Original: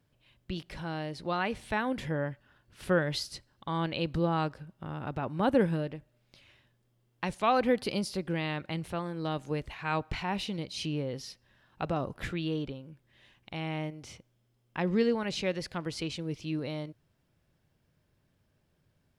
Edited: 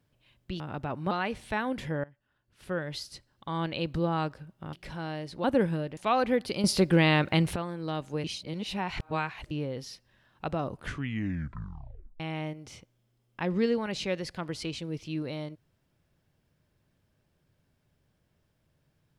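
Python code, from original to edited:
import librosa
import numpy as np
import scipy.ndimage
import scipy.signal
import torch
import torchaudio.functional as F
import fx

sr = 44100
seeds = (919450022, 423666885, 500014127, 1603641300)

y = fx.edit(x, sr, fx.swap(start_s=0.6, length_s=0.71, other_s=4.93, other_length_s=0.51),
    fx.fade_in_from(start_s=2.24, length_s=1.6, floor_db=-21.0),
    fx.cut(start_s=5.97, length_s=1.37),
    fx.clip_gain(start_s=8.01, length_s=0.92, db=10.5),
    fx.reverse_span(start_s=9.61, length_s=1.27),
    fx.tape_stop(start_s=12.08, length_s=1.49), tone=tone)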